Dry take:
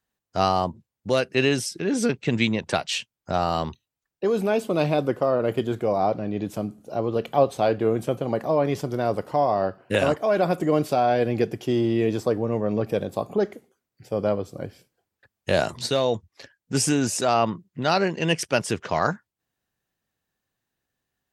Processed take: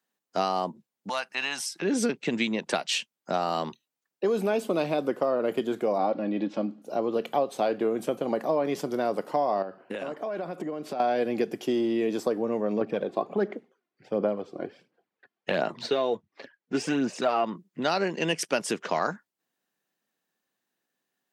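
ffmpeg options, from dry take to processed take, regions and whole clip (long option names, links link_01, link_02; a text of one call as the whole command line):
ffmpeg -i in.wav -filter_complex "[0:a]asettb=1/sr,asplit=3[link_01][link_02][link_03];[link_01]atrim=end=1.094[link_04];[link_02]atrim=start=1.09:end=1.82,asetpts=PTS-STARTPTS,afade=type=in:duration=0.004:curve=qsin,afade=type=out:start_time=0.726:duration=0.004:curve=qsin,lowshelf=frequency=600:width_type=q:width=3:gain=-12.5,acompressor=threshold=-33dB:ratio=1.5:attack=3.2:release=140:knee=1:detection=peak[link_05];[link_03]atrim=start=1.816[link_06];[link_04][link_05]acrossfade=duration=0.004:curve1=hsin:curve2=qsin[link_07];[link_07][link_06]acrossfade=duration=0.004:curve1=qsin:curve2=hsin,asettb=1/sr,asplit=3[link_08][link_09][link_10];[link_08]atrim=end=5.984[link_11];[link_09]atrim=start=5.98:end=6.82,asetpts=PTS-STARTPTS,afade=type=in:duration=0.004:curve=qsin,afade=type=out:start_time=0.836:duration=0.004:curve=qsin,lowpass=frequency=4600:width=0.5412,lowpass=frequency=4600:width=1.3066,aecho=1:1:3.6:0.53,atrim=end_sample=37044[link_12];[link_10]atrim=start=6.816[link_13];[link_11][link_12]acrossfade=duration=0.004:curve1=hsin:curve2=qsin[link_14];[link_14][link_13]acrossfade=duration=0.004:curve1=qsin:curve2=hsin,asettb=1/sr,asplit=3[link_15][link_16][link_17];[link_15]atrim=end=9.624[link_18];[link_16]atrim=start=9.62:end=11,asetpts=PTS-STARTPTS,afade=type=in:duration=0.004:curve=qsin,afade=type=out:start_time=1.376:duration=0.004:curve=qsin,acompressor=threshold=-28dB:ratio=12:attack=3.2:release=140:knee=1:detection=peak,lowpass=frequency=3200:poles=1[link_19];[link_17]atrim=start=10.996[link_20];[link_18][link_19]acrossfade=duration=0.004:curve1=hsin:curve2=qsin[link_21];[link_21][link_20]acrossfade=duration=0.004:curve1=qsin:curve2=hsin,asettb=1/sr,asplit=3[link_22][link_23][link_24];[link_22]atrim=end=12.814[link_25];[link_23]atrim=start=12.81:end=17.44,asetpts=PTS-STARTPTS,afade=type=in:duration=0.004:curve=qsin,afade=type=out:start_time=4.626:duration=0.004:curve=qsin,lowpass=3100,aphaser=in_gain=1:out_gain=1:delay=2.9:decay=0.46:speed=1.4:type=sinusoidal[link_26];[link_24]atrim=start=17.436[link_27];[link_25][link_26]acrossfade=duration=0.004:curve1=hsin:curve2=qsin[link_28];[link_28][link_27]acrossfade=duration=0.004:curve1=qsin:curve2=hsin,acompressor=threshold=-21dB:ratio=6,highpass=frequency=190:width=0.5412,highpass=frequency=190:width=1.3066" out.wav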